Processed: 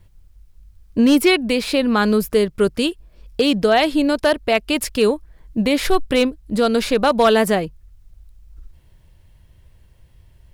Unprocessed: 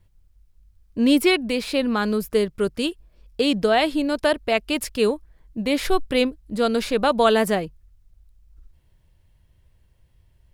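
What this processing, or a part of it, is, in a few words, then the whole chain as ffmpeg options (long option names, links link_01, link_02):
clipper into limiter: -af "asoftclip=type=hard:threshold=-10.5dB,alimiter=limit=-15.5dB:level=0:latency=1:release=496,volume=8.5dB"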